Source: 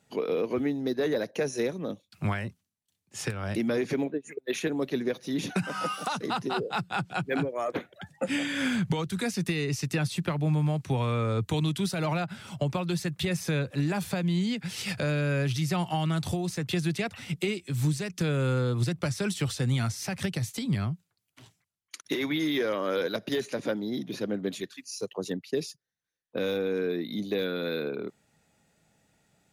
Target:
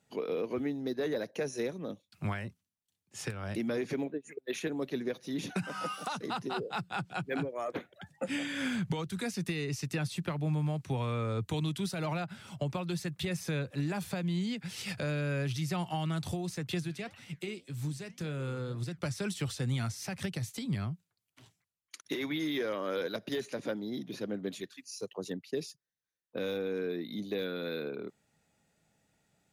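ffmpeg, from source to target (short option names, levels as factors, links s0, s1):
-filter_complex "[0:a]asplit=3[s0][s1][s2];[s0]afade=t=out:st=16.82:d=0.02[s3];[s1]flanger=delay=5.7:depth=6.8:regen=-78:speed=1.8:shape=sinusoidal,afade=t=in:st=16.82:d=0.02,afade=t=out:st=18.97:d=0.02[s4];[s2]afade=t=in:st=18.97:d=0.02[s5];[s3][s4][s5]amix=inputs=3:normalize=0,volume=0.531"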